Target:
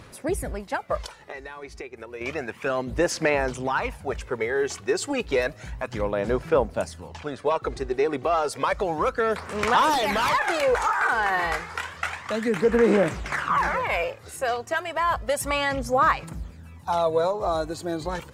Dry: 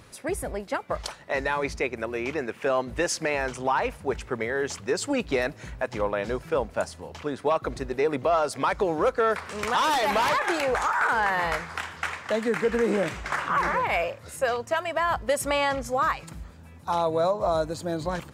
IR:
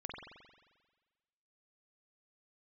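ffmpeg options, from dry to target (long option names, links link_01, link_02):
-filter_complex "[0:a]asettb=1/sr,asplit=3[link_01][link_02][link_03];[link_01]atrim=end=1.024[link_04];[link_02]atrim=start=1.02:end=2.21,asetpts=PTS-STARTPTS,afade=type=in:duration=0.004:curve=qsin,afade=type=out:start_time=1.186:duration=0.004:curve=qsin,acompressor=threshold=-35dB:ratio=16[link_05];[link_03]atrim=start=2.206[link_06];[link_04][link_05]acrossfade=duration=0.004:curve1=hsin:curve2=qsin[link_07];[link_07][link_06]acrossfade=duration=0.004:curve1=qsin:curve2=hsin,asettb=1/sr,asplit=3[link_08][link_09][link_10];[link_08]atrim=end=7.084[link_11];[link_09]atrim=start=7.08:end=8.23,asetpts=PTS-STARTPTS,afade=type=in:duration=0.004:curve=qsin,afade=type=out:start_time=1.146:duration=0.004:curve=qsin,equalizer=frequency=13000:width_type=o:width=0.31:gain=-14[link_12];[link_10]atrim=start=8.226[link_13];[link_11][link_12]acrossfade=duration=0.004:curve1=hsin:curve2=qsin[link_14];[link_14][link_13]acrossfade=duration=0.004:curve1=qsin:curve2=hsin,aphaser=in_gain=1:out_gain=1:delay=2.7:decay=0.46:speed=0.31:type=sinusoidal"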